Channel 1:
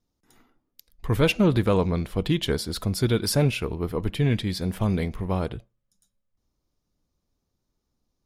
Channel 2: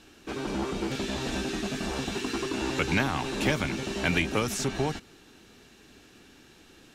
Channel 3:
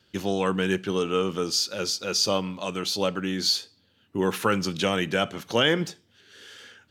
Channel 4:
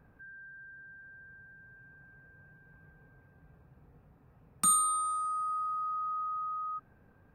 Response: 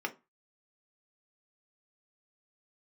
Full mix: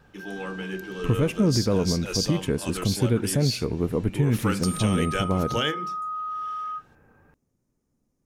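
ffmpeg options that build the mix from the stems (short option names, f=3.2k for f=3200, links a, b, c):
-filter_complex "[0:a]equalizer=f=125:t=o:w=1:g=8,equalizer=f=250:t=o:w=1:g=8,equalizer=f=500:t=o:w=1:g=5,equalizer=f=2k:t=o:w=1:g=5,equalizer=f=4k:t=o:w=1:g=-11,equalizer=f=8k:t=o:w=1:g=9,volume=-2.5dB,asplit=2[a][b];[1:a]alimiter=limit=-18.5dB:level=0:latency=1:release=132,volume=-15.5dB[c];[2:a]bass=f=250:g=6,treble=f=4k:g=9,volume=-6.5dB,asplit=2[d][e];[e]volume=-8.5dB[f];[3:a]acompressor=threshold=-36dB:ratio=6,volume=2.5dB,asplit=2[g][h];[h]volume=-6dB[i];[b]apad=whole_len=304388[j];[d][j]sidechaingate=range=-33dB:threshold=-43dB:ratio=16:detection=peak[k];[4:a]atrim=start_sample=2205[l];[f][i]amix=inputs=2:normalize=0[m];[m][l]afir=irnorm=-1:irlink=0[n];[a][c][k][g][n]amix=inputs=5:normalize=0,alimiter=limit=-12.5dB:level=0:latency=1:release=288"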